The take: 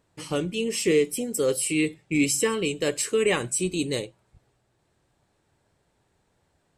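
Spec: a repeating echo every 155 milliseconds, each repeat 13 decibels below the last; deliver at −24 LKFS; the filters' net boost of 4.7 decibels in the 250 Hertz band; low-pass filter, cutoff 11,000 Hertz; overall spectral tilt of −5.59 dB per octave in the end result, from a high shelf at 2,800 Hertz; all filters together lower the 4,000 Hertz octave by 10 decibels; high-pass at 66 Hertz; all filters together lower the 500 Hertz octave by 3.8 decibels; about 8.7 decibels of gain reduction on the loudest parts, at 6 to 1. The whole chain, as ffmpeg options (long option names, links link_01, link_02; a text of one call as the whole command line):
ffmpeg -i in.wav -af "highpass=66,lowpass=11000,equalizer=frequency=250:width_type=o:gain=9,equalizer=frequency=500:width_type=o:gain=-7.5,highshelf=frequency=2800:gain=-7.5,equalizer=frequency=4000:width_type=o:gain=-8.5,acompressor=threshold=-22dB:ratio=6,aecho=1:1:155|310|465:0.224|0.0493|0.0108,volume=4dB" out.wav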